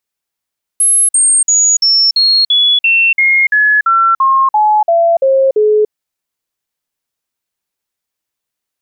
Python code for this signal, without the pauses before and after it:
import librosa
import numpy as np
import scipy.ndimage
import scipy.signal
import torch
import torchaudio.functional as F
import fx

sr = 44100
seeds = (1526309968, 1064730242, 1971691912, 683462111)

y = fx.stepped_sweep(sr, from_hz=10800.0, direction='down', per_octave=3, tones=15, dwell_s=0.29, gap_s=0.05, level_db=-6.5)